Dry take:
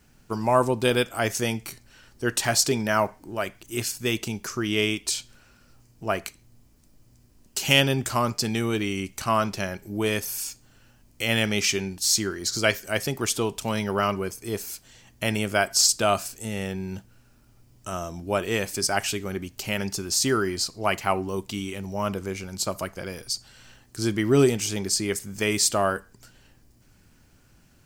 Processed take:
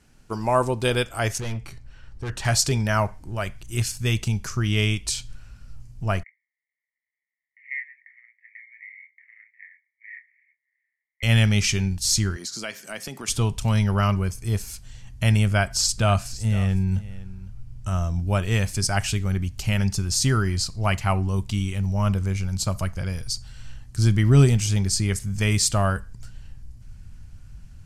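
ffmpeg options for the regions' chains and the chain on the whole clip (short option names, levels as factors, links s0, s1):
-filter_complex "[0:a]asettb=1/sr,asplit=3[s0][s1][s2];[s0]atrim=end=1.384[s3];[s1]atrim=start=1.38:end=2.45,asetpts=PTS-STARTPTS,afade=t=in:d=0.004:c=qsin,afade=t=out:st=1.066:d=0.004:c=qsin,lowpass=f=2300:p=1,asoftclip=type=hard:threshold=0.0376[s4];[s2]atrim=start=2.446[s5];[s3][s4]acrossfade=d=0.004:c1=hsin:c2=qsin[s6];[s6][s5]acrossfade=d=0.004:c1=qsin:c2=hsin,asettb=1/sr,asplit=3[s7][s8][s9];[s7]atrim=end=6.234[s10];[s8]atrim=start=6.23:end=11.23,asetpts=PTS-STARTPTS,afade=t=in:d=0.004:c=qsin,afade=t=out:st=4.996:d=0.004:c=qsin,aeval=exprs='val(0)*sin(2*PI*69*n/s)':c=same,asuperpass=centerf=2000:order=8:qfactor=5.1,asplit=2[s11][s12];[s12]adelay=25,volume=0.447[s13];[s11][s13]amix=inputs=2:normalize=0,atrim=end_sample=220500[s14];[s9]atrim=start=11.226[s15];[s10][s14]acrossfade=d=0.004:c1=hsin:c2=qsin[s16];[s16][s15]acrossfade=d=0.004:c1=qsin:c2=hsin,asettb=1/sr,asplit=3[s17][s18][s19];[s17]atrim=end=12.364[s20];[s18]atrim=start=12.36:end=13.28,asetpts=PTS-STARTPTS,afade=t=in:d=0.004:c=qsin,afade=t=out:st=0.916:d=0.004:c=qsin,highpass=f=210:w=0.5412,highpass=f=210:w=1.3066,acompressor=threshold=0.0282:ratio=2.5:attack=3.2:release=140:knee=1:detection=peak[s21];[s19]atrim=start=13.276[s22];[s20][s21]acrossfade=d=0.004:c1=hsin:c2=qsin[s23];[s23][s22]acrossfade=d=0.004:c1=qsin:c2=hsin,asettb=1/sr,asplit=3[s24][s25][s26];[s24]atrim=end=15.474[s27];[s25]atrim=start=15.47:end=18.2,asetpts=PTS-STARTPTS,afade=t=in:d=0.004:c=qsin,afade=t=out:st=2.726:d=0.004:c=qsin,bass=f=250:g=1,treble=f=4000:g=-4,aecho=1:1:509:0.141,atrim=end_sample=120393[s28];[s26]atrim=start=18.196[s29];[s27][s28]acrossfade=d=0.004:c1=hsin:c2=qsin[s30];[s30][s29]acrossfade=d=0.004:c1=qsin:c2=hsin,lowpass=f=12000:w=0.5412,lowpass=f=12000:w=1.3066,asubboost=boost=12:cutoff=100"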